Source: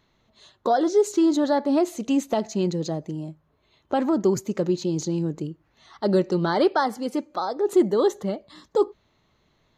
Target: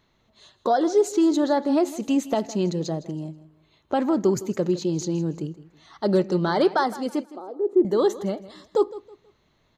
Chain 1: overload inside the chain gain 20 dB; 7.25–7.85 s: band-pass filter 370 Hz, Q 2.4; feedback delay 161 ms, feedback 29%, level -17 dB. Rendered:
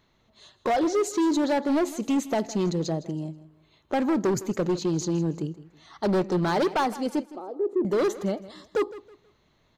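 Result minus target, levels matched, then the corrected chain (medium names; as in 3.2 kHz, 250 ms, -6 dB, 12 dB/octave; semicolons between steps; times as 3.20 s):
overload inside the chain: distortion +30 dB
overload inside the chain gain 11 dB; 7.25–7.85 s: band-pass filter 370 Hz, Q 2.4; feedback delay 161 ms, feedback 29%, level -17 dB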